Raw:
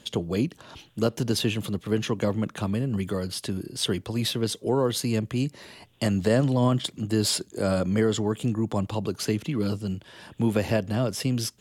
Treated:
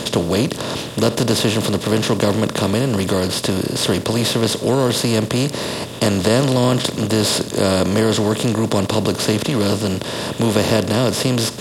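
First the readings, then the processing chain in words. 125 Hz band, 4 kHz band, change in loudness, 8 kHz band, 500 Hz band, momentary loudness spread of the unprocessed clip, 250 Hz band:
+7.0 dB, +11.0 dB, +8.5 dB, +10.5 dB, +9.5 dB, 8 LU, +8.0 dB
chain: per-bin compression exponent 0.4; gain +3 dB

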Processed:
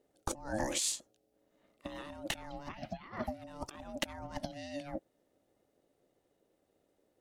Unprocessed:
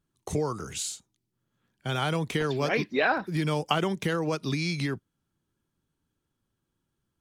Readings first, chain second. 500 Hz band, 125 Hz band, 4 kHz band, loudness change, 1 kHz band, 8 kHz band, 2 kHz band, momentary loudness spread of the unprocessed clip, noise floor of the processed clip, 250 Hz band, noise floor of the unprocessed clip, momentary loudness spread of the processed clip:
-13.0 dB, -18.0 dB, -7.5 dB, -11.0 dB, -12.0 dB, -0.5 dB, -14.5 dB, 8 LU, -77 dBFS, -12.5 dB, -81 dBFS, 13 LU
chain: low shelf 170 Hz +6 dB; negative-ratio compressor -33 dBFS, ratio -0.5; ring modulator 430 Hz; gain -3 dB

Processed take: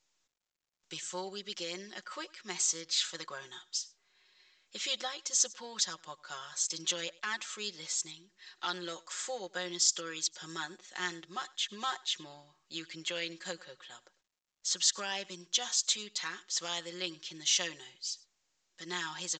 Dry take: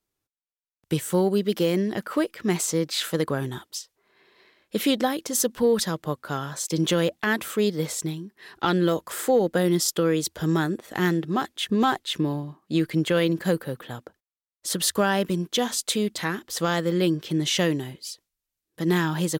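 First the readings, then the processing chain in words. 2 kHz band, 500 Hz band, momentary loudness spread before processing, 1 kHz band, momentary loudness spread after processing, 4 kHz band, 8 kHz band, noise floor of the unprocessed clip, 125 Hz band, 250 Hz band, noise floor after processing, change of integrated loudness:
-9.5 dB, -20.5 dB, 10 LU, -12.5 dB, 15 LU, -3.5 dB, -1.5 dB, under -85 dBFS, -27.5 dB, -24.5 dB, -80 dBFS, -9.5 dB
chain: differentiator; comb 5.5 ms, depth 79%; echo 0.1 s -23 dB; dynamic EQ 1000 Hz, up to +4 dB, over -54 dBFS, Q 1.5; µ-law 128 kbps 16000 Hz

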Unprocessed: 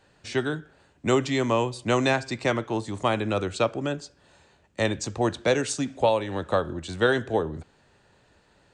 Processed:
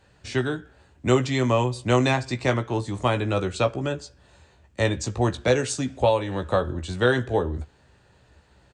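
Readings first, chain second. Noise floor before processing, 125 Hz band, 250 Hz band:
-62 dBFS, +6.0 dB, +1.5 dB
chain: bell 74 Hz +11.5 dB 1.1 oct; doubler 16 ms -7 dB

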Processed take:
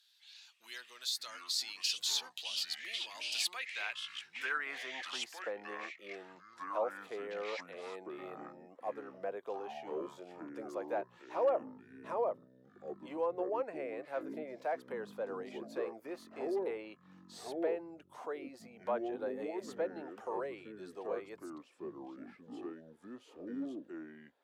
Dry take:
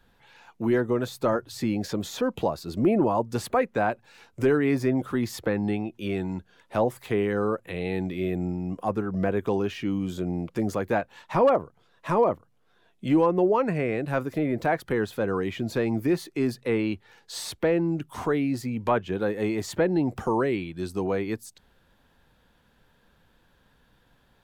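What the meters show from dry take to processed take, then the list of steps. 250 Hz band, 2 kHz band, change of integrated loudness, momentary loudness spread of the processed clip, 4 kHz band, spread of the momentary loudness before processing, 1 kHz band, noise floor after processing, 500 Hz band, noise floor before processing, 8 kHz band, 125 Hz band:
-19.5 dB, -8.5 dB, -12.5 dB, 15 LU, +2.5 dB, 8 LU, -12.5 dB, -64 dBFS, -12.5 dB, -64 dBFS, -2.0 dB, -31.0 dB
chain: differentiator; band-pass sweep 4200 Hz -> 560 Hz, 3.33–5.58; echoes that change speed 0.334 s, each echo -6 st, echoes 2, each echo -6 dB; gain +13 dB

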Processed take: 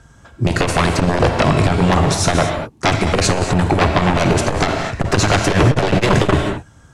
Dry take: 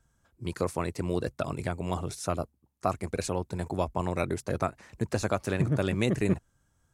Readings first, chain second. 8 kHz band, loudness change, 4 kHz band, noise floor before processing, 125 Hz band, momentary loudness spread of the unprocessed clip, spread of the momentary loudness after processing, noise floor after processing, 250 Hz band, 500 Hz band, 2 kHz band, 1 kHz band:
+18.0 dB, +15.0 dB, +21.0 dB, -72 dBFS, +15.5 dB, 7 LU, 5 LU, -47 dBFS, +14.0 dB, +13.5 dB, +19.0 dB, +17.0 dB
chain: HPF 52 Hz 6 dB/oct; sine folder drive 16 dB, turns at -12 dBFS; air absorption 62 m; non-linear reverb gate 0.26 s flat, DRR 5 dB; core saturation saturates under 130 Hz; gain +4.5 dB

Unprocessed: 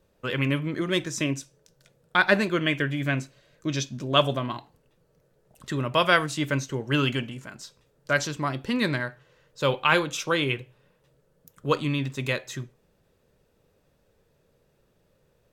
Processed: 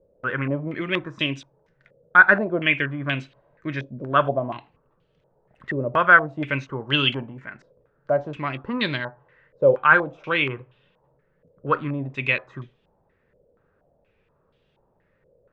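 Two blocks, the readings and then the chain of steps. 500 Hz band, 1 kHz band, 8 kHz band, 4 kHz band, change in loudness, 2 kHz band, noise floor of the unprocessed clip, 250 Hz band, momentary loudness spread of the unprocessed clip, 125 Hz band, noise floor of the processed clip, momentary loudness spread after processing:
+3.0 dB, +5.5 dB, under -20 dB, 0.0 dB, +4.0 dB, +7.0 dB, -67 dBFS, -1.0 dB, 16 LU, -1.5 dB, -67 dBFS, 19 LU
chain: stepped low-pass 4.2 Hz 540–3200 Hz; gain -1.5 dB

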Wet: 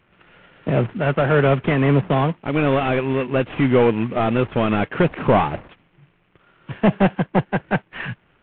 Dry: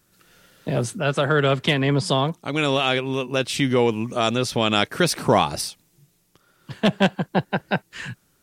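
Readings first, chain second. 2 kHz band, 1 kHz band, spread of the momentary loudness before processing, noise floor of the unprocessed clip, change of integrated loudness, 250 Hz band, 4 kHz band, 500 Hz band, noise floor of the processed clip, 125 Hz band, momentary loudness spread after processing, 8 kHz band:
0.0 dB, +1.5 dB, 8 LU, -64 dBFS, +2.5 dB, +4.0 dB, -10.5 dB, +3.0 dB, -61 dBFS, +4.0 dB, 8 LU, under -40 dB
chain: CVSD 16 kbps; gain +5 dB

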